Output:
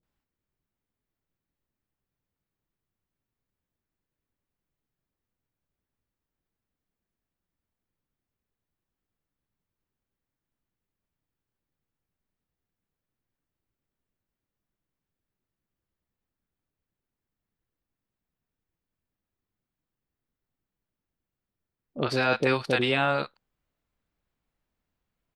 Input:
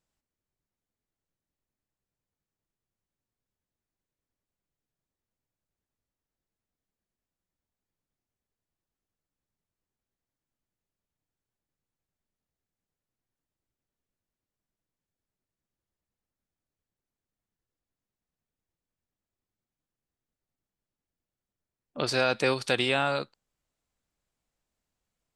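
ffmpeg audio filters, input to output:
-filter_complex "[0:a]equalizer=f=7.7k:t=o:w=1.6:g=-13.5,acrossover=split=630[a][b];[b]adelay=30[c];[a][c]amix=inputs=2:normalize=0,volume=4dB"

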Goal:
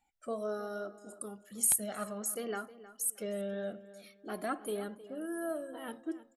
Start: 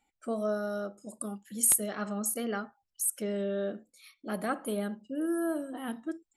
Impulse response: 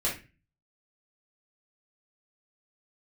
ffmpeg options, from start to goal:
-filter_complex "[0:a]flanger=delay=1.1:depth=1.9:regen=23:speed=0.56:shape=triangular,asplit=2[a][b];[b]adelay=313,lowpass=f=3.1k:p=1,volume=-15.5dB,asplit=2[c][d];[d]adelay=313,lowpass=f=3.1k:p=1,volume=0.29,asplit=2[e][f];[f]adelay=313,lowpass=f=3.1k:p=1,volume=0.29[g];[a][c][e][g]amix=inputs=4:normalize=0"

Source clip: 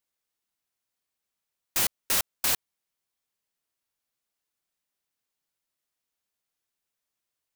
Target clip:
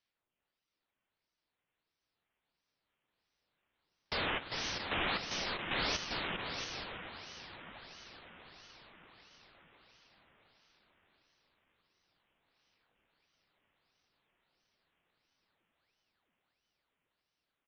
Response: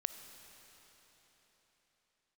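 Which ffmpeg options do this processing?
-filter_complex "[0:a]alimiter=limit=-21.5dB:level=0:latency=1,dynaudnorm=f=630:g=5:m=11dB,aphaser=in_gain=1:out_gain=1:delay=4.3:decay=0.52:speed=0.37:type=sinusoidal,aresample=16000,aeval=exprs='0.0531*(abs(mod(val(0)/0.0531+3,4)-2)-1)':c=same,aresample=44100,aecho=1:1:170|289|372.3|430.6|471.4:0.631|0.398|0.251|0.158|0.1[a];[1:a]atrim=start_sample=2205[b];[a][b]afir=irnorm=-1:irlink=0,asetrate=18846,aresample=44100,aeval=exprs='val(0)*sin(2*PI*1600*n/s+1600*0.9/1.5*sin(2*PI*1.5*n/s))':c=same"

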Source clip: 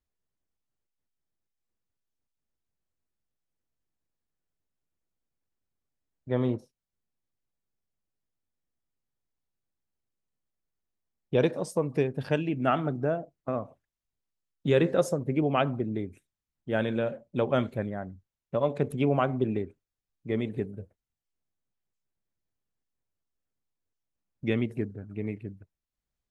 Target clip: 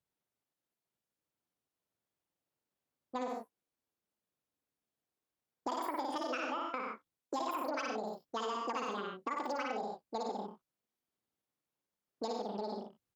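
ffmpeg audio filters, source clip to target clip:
-filter_complex "[0:a]aecho=1:1:110|187|240.9|278.6|305:0.631|0.398|0.251|0.158|0.1,asplit=2[a][b];[b]asoftclip=type=tanh:threshold=-20dB,volume=-7.5dB[c];[a][c]amix=inputs=2:normalize=0,highpass=f=97:p=1,acompressor=threshold=-31dB:ratio=6,asetrate=88200,aresample=44100,volume=-3.5dB"

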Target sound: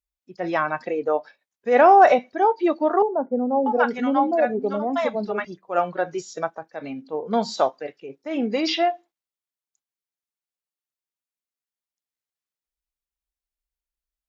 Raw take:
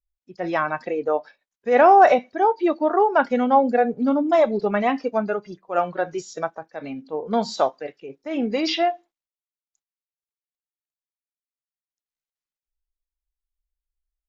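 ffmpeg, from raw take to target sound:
-filter_complex "[0:a]highpass=f=72:p=1,asettb=1/sr,asplit=3[a][b][c];[a]atrim=end=3.024[d];[b]atrim=start=3.02:end=5.45,asetpts=PTS-STARTPTS,afade=t=in:d=0.004:c=qsin,afade=t=out:st=2.426:d=0.004:c=qsin,acrossover=split=170|730[e][f][g];[e]adelay=560[h];[g]adelay=640[i];[h][f][i]amix=inputs=3:normalize=0,atrim=end_sample=107163[j];[c]atrim=start=5.446[k];[d][j]acrossfade=d=0.004:c1=hsin:c2=qsin[l];[l][k]acrossfade=d=0.004:c1=qsin:c2=hsin"

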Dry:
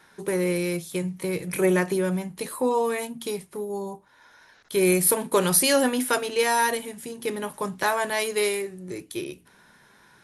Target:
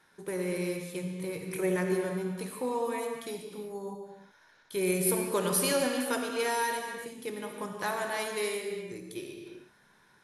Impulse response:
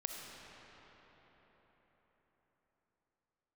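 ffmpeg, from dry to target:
-filter_complex "[1:a]atrim=start_sample=2205,afade=t=out:st=0.39:d=0.01,atrim=end_sample=17640,asetrate=40572,aresample=44100[a];[0:a][a]afir=irnorm=-1:irlink=0,volume=-7dB"

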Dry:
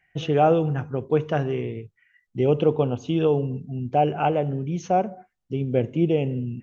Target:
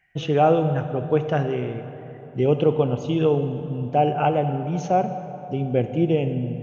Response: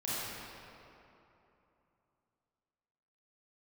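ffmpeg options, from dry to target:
-filter_complex "[0:a]asplit=2[a][b];[b]equalizer=f=340:t=o:w=0.79:g=-6[c];[1:a]atrim=start_sample=2205,asetrate=32193,aresample=44100[d];[c][d]afir=irnorm=-1:irlink=0,volume=-15.5dB[e];[a][e]amix=inputs=2:normalize=0"

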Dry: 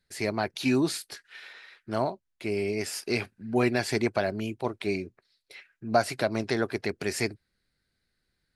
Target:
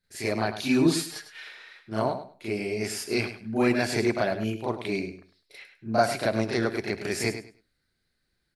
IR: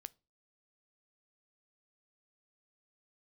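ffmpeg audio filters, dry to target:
-filter_complex "[0:a]asettb=1/sr,asplit=3[a][b][c];[a]atrim=end=0.814[d];[b]atrim=start=0.81:end=1.45,asetpts=PTS-STARTPTS,afade=t=in:d=0.004:c=qsin,afade=t=out:st=0.636:d=0.004:c=qsin,aecho=1:1:6.5:0.83,atrim=end_sample=28224[e];[c]atrim=start=1.446[f];[d][e]acrossfade=d=0.004:c1=hsin:c2=qsin[g];[g][f]acrossfade=d=0.004:c1=qsin:c2=hsin,aecho=1:1:102|204|306:0.282|0.0564|0.0113,asplit=2[h][i];[1:a]atrim=start_sample=2205,adelay=36[j];[i][j]afir=irnorm=-1:irlink=0,volume=12dB[k];[h][k]amix=inputs=2:normalize=0,volume=-6dB"

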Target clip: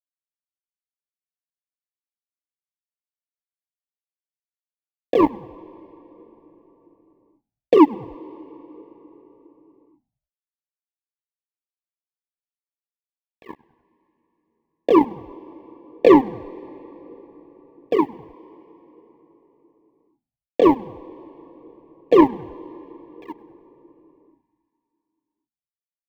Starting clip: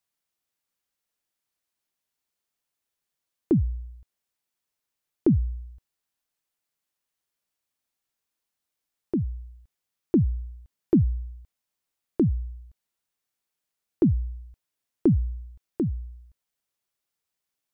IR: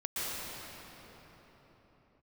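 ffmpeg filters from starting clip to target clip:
-filter_complex "[0:a]agate=range=-33dB:threshold=-41dB:ratio=3:detection=peak,equalizer=f=130:t=o:w=1.8:g=8,acrossover=split=110[a][b];[a]acompressor=threshold=-36dB:ratio=4[c];[b]crystalizer=i=4.5:c=0[d];[c][d]amix=inputs=2:normalize=0,atempo=0.68,afreqshift=150,flanger=delay=7.3:depth=7.8:regen=89:speed=1.3:shape=sinusoidal,acrusher=bits=2:mix=0:aa=0.5,asuperstop=centerf=1400:order=20:qfactor=2.7,asplit=4[e][f][g][h];[f]adelay=100,afreqshift=-90,volume=-22.5dB[i];[g]adelay=200,afreqshift=-180,volume=-29.6dB[j];[h]adelay=300,afreqshift=-270,volume=-36.8dB[k];[e][i][j][k]amix=inputs=4:normalize=0,asplit=2[l][m];[1:a]atrim=start_sample=2205[n];[m][n]afir=irnorm=-1:irlink=0,volume=-27dB[o];[l][o]amix=inputs=2:normalize=0,volume=8dB"

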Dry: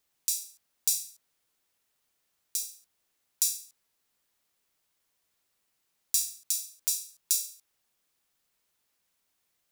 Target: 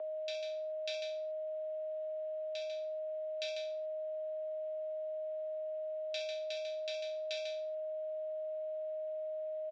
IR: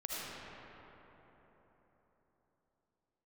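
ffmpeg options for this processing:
-af "aecho=1:1:64.14|145.8:0.355|0.501,aeval=exprs='val(0)+0.00708*sin(2*PI*680*n/s)':c=same,highpass=f=470:t=q:w=0.5412,highpass=f=470:t=q:w=1.307,lowpass=f=3.4k:t=q:w=0.5176,lowpass=f=3.4k:t=q:w=0.7071,lowpass=f=3.4k:t=q:w=1.932,afreqshift=-57,volume=6.5dB"

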